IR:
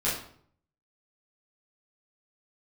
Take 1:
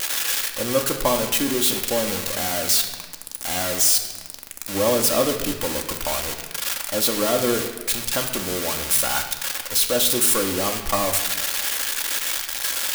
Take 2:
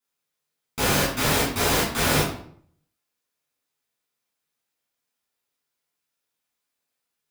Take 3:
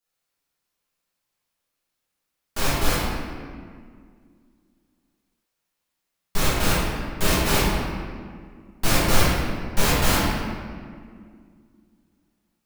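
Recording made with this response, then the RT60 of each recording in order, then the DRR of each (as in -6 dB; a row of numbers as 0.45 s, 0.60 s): 2; 1.3 s, 0.60 s, 2.0 s; 2.5 dB, -9.0 dB, -10.0 dB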